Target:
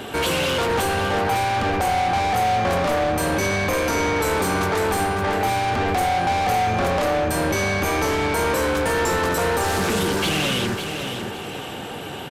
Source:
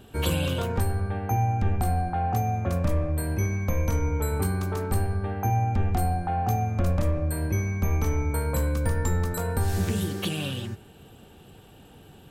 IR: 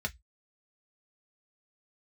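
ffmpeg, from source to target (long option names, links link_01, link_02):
-filter_complex "[0:a]highshelf=frequency=2400:gain=-4.5,acrossover=split=180[link_01][link_02];[link_01]alimiter=level_in=3.5dB:limit=-24dB:level=0:latency=1:release=144,volume=-3.5dB[link_03];[link_03][link_02]amix=inputs=2:normalize=0,asplit=2[link_04][link_05];[link_05]asetrate=33038,aresample=44100,atempo=1.33484,volume=-10dB[link_06];[link_04][link_06]amix=inputs=2:normalize=0,asplit=2[link_07][link_08];[link_08]highpass=frequency=720:poles=1,volume=31dB,asoftclip=type=tanh:threshold=-15dB[link_09];[link_07][link_09]amix=inputs=2:normalize=0,lowpass=frequency=5900:poles=1,volume=-6dB,asplit=2[link_10][link_11];[link_11]aecho=0:1:554|1108|1662|2216:0.422|0.143|0.0487|0.0166[link_12];[link_10][link_12]amix=inputs=2:normalize=0,aresample=32000,aresample=44100"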